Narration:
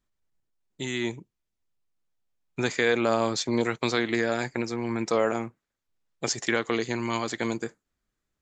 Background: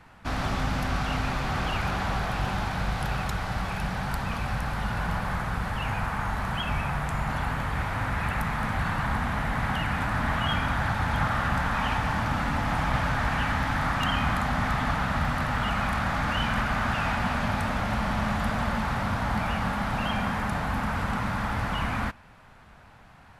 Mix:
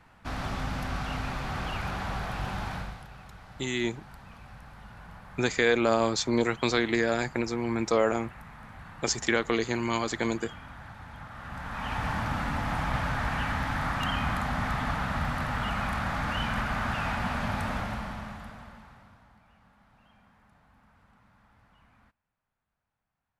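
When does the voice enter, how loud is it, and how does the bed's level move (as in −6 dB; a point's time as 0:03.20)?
2.80 s, 0.0 dB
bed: 0:02.75 −5 dB
0:03.07 −18.5 dB
0:11.29 −18.5 dB
0:12.04 −3.5 dB
0:17.76 −3.5 dB
0:19.41 −33.5 dB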